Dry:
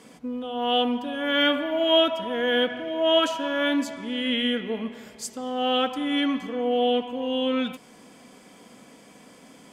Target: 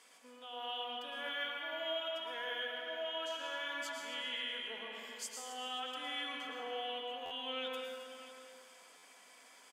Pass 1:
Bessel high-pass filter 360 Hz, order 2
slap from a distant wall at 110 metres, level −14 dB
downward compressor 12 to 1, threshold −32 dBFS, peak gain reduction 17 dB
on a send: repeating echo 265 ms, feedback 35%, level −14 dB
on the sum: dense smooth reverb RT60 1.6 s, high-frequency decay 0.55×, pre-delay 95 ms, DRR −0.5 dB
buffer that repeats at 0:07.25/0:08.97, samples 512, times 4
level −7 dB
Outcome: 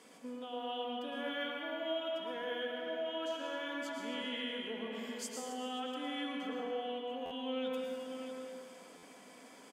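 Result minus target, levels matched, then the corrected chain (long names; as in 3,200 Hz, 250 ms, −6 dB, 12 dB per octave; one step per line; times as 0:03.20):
500 Hz band +4.5 dB
Bessel high-pass filter 1,200 Hz, order 2
slap from a distant wall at 110 metres, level −14 dB
downward compressor 12 to 1, threshold −32 dBFS, peak gain reduction 13.5 dB
on a send: repeating echo 265 ms, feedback 35%, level −14 dB
on the sum: dense smooth reverb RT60 1.6 s, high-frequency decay 0.55×, pre-delay 95 ms, DRR −0.5 dB
buffer that repeats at 0:07.25/0:08.97, samples 512, times 4
level −7 dB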